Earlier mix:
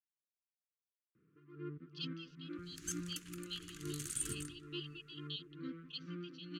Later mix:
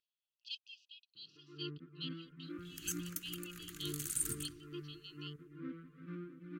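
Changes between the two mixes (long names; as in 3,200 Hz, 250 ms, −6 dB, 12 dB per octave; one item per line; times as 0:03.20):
speech: entry −1.50 s
master: remove low-pass filter 8,900 Hz 12 dB per octave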